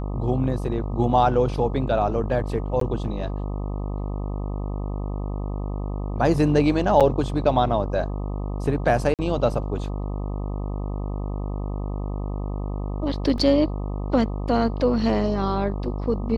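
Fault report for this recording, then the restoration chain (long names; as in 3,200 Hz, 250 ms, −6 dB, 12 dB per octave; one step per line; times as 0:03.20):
mains buzz 50 Hz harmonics 25 −28 dBFS
0:02.80–0:02.81: drop-out 13 ms
0:07.00–0:07.01: drop-out 6.9 ms
0:09.14–0:09.19: drop-out 48 ms
0:13.38: drop-out 2.3 ms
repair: hum removal 50 Hz, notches 25
repair the gap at 0:02.80, 13 ms
repair the gap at 0:07.00, 6.9 ms
repair the gap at 0:09.14, 48 ms
repair the gap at 0:13.38, 2.3 ms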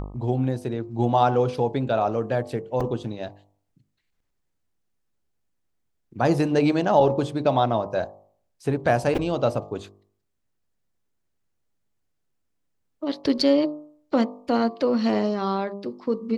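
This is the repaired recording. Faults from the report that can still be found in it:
none of them is left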